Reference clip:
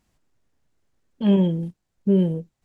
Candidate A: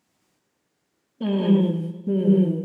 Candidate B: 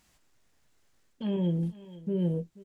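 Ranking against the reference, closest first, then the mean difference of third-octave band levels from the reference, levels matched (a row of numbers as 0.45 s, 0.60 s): B, A; 2.5 dB, 5.5 dB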